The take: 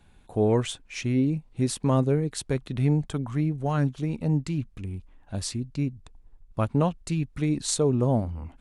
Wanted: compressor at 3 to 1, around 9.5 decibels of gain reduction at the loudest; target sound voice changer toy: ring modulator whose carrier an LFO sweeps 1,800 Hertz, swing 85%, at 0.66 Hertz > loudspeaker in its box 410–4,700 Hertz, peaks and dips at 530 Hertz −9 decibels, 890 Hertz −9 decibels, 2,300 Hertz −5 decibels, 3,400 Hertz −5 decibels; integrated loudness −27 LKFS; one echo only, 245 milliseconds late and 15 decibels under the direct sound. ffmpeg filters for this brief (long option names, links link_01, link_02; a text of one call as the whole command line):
ffmpeg -i in.wav -af "acompressor=threshold=-31dB:ratio=3,aecho=1:1:245:0.178,aeval=exprs='val(0)*sin(2*PI*1800*n/s+1800*0.85/0.66*sin(2*PI*0.66*n/s))':channel_layout=same,highpass=410,equalizer=frequency=530:width_type=q:width=4:gain=-9,equalizer=frequency=890:width_type=q:width=4:gain=-9,equalizer=frequency=2300:width_type=q:width=4:gain=-5,equalizer=frequency=3400:width_type=q:width=4:gain=-5,lowpass=frequency=4700:width=0.5412,lowpass=frequency=4700:width=1.3066,volume=11.5dB" out.wav